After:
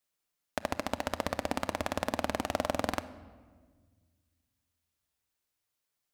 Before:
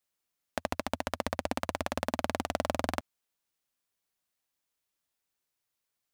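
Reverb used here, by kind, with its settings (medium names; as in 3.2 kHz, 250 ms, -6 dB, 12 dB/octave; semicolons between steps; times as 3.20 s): simulated room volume 1600 m³, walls mixed, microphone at 0.45 m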